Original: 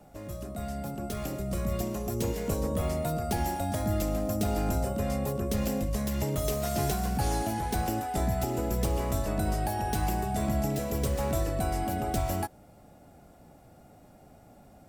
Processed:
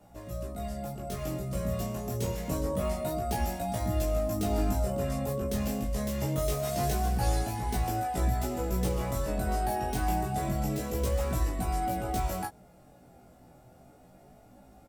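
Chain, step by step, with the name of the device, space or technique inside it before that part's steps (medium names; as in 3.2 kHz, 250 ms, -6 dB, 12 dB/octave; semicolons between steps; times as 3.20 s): double-tracked vocal (doubling 16 ms -3 dB; chorus 0.26 Hz, delay 17 ms, depth 7.1 ms)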